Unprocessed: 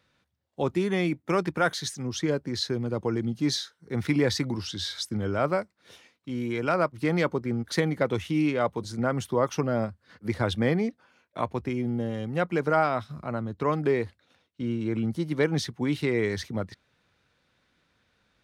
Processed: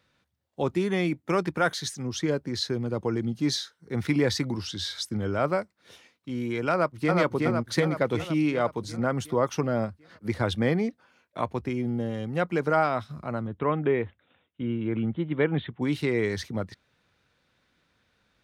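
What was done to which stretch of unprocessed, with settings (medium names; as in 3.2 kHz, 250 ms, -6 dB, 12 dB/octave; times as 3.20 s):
6.71–7.13 s: echo throw 370 ms, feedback 60%, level -1.5 dB
13.47–15.82 s: steep low-pass 3.6 kHz 96 dB/octave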